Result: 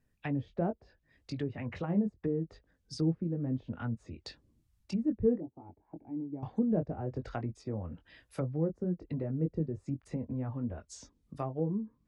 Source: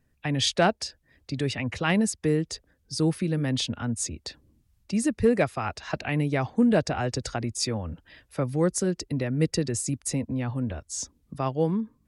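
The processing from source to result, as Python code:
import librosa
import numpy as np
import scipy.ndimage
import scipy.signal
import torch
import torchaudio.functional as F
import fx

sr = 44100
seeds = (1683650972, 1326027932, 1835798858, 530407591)

y = fx.formant_cascade(x, sr, vowel='u', at=(5.38, 6.43))
y = fx.chorus_voices(y, sr, voices=4, hz=0.68, base_ms=21, depth_ms=3.4, mix_pct=30)
y = fx.env_lowpass_down(y, sr, base_hz=510.0, full_db=-25.5)
y = y * librosa.db_to_amplitude(-4.0)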